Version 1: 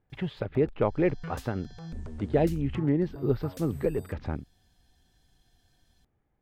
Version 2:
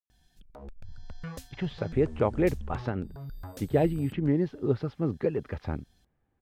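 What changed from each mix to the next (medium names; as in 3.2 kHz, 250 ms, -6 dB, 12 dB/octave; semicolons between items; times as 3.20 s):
speech: entry +1.40 s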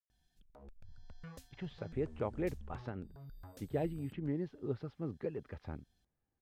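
speech -11.5 dB; background -11.0 dB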